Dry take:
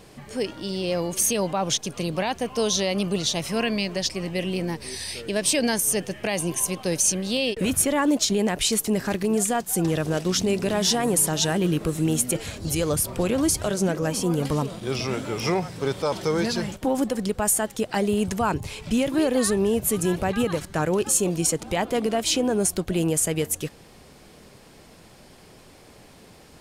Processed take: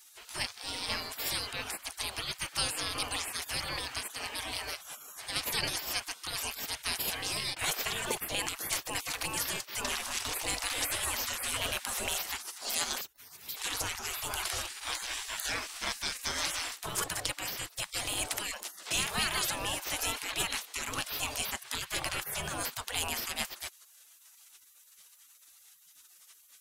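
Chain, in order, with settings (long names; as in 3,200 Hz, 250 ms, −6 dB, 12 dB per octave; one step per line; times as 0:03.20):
0:13.01–0:13.57: first difference
gate on every frequency bin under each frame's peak −25 dB weak
level +6.5 dB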